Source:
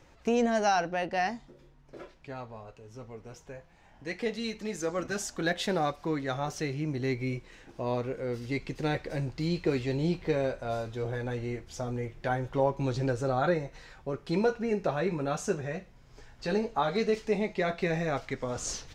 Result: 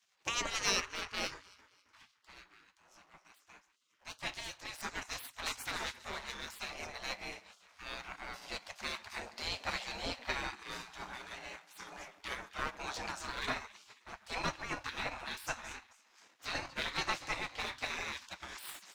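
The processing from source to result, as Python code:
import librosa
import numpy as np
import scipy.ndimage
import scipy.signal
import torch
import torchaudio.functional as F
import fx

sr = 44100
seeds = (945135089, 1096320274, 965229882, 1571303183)

p1 = fx.diode_clip(x, sr, knee_db=-16.5)
p2 = p1 + fx.echo_alternate(p1, sr, ms=135, hz=820.0, feedback_pct=70, wet_db=-13.5, dry=0)
p3 = fx.power_curve(p2, sr, exponent=1.4)
p4 = fx.spec_gate(p3, sr, threshold_db=-20, keep='weak')
y = p4 * 10.0 ** (8.5 / 20.0)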